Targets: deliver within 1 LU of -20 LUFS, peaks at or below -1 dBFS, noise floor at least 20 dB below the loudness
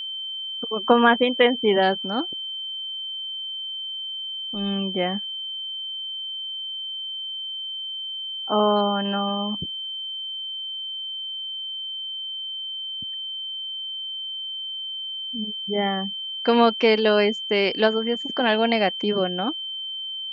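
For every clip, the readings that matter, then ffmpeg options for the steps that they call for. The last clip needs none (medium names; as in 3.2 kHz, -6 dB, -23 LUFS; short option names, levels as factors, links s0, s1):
steady tone 3.1 kHz; tone level -29 dBFS; loudness -24.5 LUFS; peak level -4.5 dBFS; loudness target -20.0 LUFS
-> -af "bandreject=f=3100:w=30"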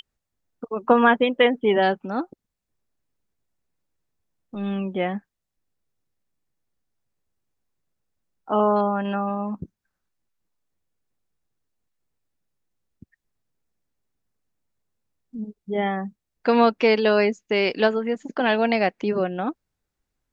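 steady tone not found; loudness -22.5 LUFS; peak level -5.0 dBFS; loudness target -20.0 LUFS
-> -af "volume=1.33"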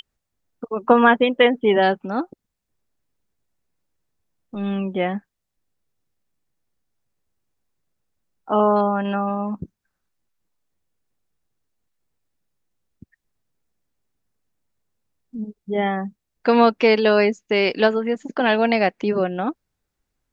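loudness -20.0 LUFS; peak level -2.5 dBFS; noise floor -80 dBFS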